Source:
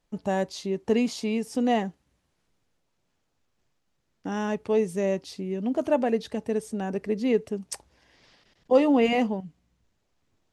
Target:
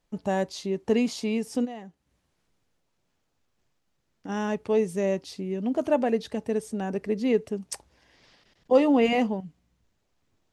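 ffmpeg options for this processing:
-filter_complex "[0:a]asplit=3[a][b][c];[a]afade=t=out:st=1.64:d=0.02[d];[b]acompressor=threshold=-41dB:ratio=3,afade=t=in:st=1.64:d=0.02,afade=t=out:st=4.28:d=0.02[e];[c]afade=t=in:st=4.28:d=0.02[f];[d][e][f]amix=inputs=3:normalize=0"

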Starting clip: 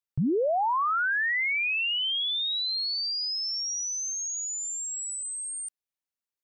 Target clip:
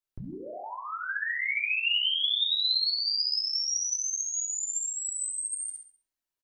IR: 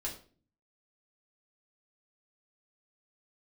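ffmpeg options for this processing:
-filter_complex "[0:a]aecho=1:1:67|134|201|268:0.562|0.202|0.0729|0.0262[a];[1:a]atrim=start_sample=2205,afade=t=out:st=0.32:d=0.01,atrim=end_sample=14553[b];[a][b]afir=irnorm=-1:irlink=0,acrossover=split=2200[c][d];[c]acompressor=threshold=-37dB:ratio=16[e];[e][d]amix=inputs=2:normalize=0"

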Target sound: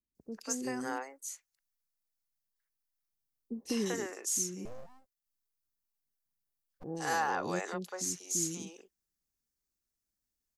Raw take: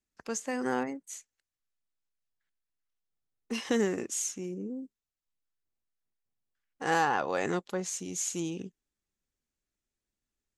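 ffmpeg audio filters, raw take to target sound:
-filter_complex "[0:a]acrossover=split=460|3000[a][b][c];[c]adelay=150[d];[b]adelay=190[e];[a][e][d]amix=inputs=3:normalize=0,asettb=1/sr,asplit=3[f][g][h];[f]atrim=end=4.654[i];[g]atrim=start=4.65:end=6.84,asetpts=PTS-STARTPTS,afade=t=in:d=0.004:c=qsin,afade=t=out:st=2.186:d=0.004:c=qsin,aeval=exprs='abs(val(0))':c=same[j];[h]atrim=start=6.836[k];[i][j]acrossfade=d=0.004:c1=hsin:c2=qsin[l];[l][k]acrossfade=d=0.004:c1=qsin:c2=hsin,aexciter=amount=1.6:drive=7.3:freq=4.4k,volume=-3.5dB"

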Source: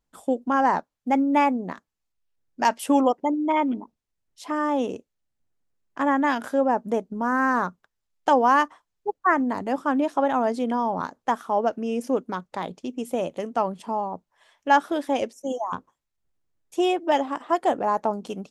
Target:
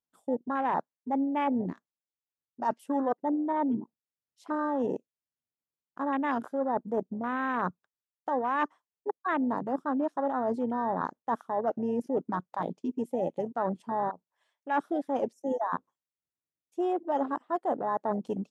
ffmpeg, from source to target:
-af "afwtdn=0.0501,highpass=110,areverse,acompressor=threshold=-28dB:ratio=6,areverse,volume=2dB"

